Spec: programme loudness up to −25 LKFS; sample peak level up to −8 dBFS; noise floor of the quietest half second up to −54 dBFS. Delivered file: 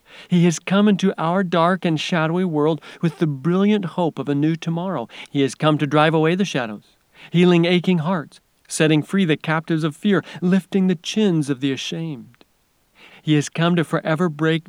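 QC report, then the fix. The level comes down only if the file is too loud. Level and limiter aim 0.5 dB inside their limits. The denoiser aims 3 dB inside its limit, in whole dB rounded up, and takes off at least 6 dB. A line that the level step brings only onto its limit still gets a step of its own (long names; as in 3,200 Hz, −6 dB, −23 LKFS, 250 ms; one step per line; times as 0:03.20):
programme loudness −19.5 LKFS: out of spec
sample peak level −2.0 dBFS: out of spec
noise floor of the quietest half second −63 dBFS: in spec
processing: level −6 dB
brickwall limiter −8.5 dBFS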